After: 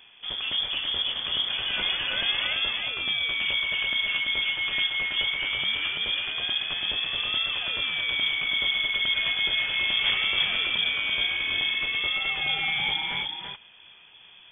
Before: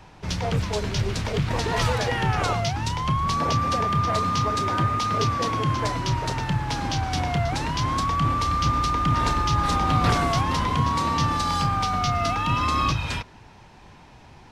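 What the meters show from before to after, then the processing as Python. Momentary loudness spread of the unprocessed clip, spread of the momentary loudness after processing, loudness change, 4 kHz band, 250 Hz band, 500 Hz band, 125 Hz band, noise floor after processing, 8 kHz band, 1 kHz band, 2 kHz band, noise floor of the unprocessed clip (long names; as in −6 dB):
4 LU, 3 LU, −0.5 dB, +9.5 dB, −19.5 dB, −15.0 dB, −26.0 dB, −52 dBFS, below −40 dB, −18.0 dB, +6.5 dB, −48 dBFS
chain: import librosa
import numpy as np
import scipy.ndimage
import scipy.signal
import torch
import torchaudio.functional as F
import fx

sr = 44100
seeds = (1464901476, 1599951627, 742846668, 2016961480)

y = x + 10.0 ** (-4.0 / 20.0) * np.pad(x, (int(337 * sr / 1000.0), 0))[:len(x)]
y = fx.freq_invert(y, sr, carrier_hz=3400)
y = y * 10.0 ** (-5.5 / 20.0)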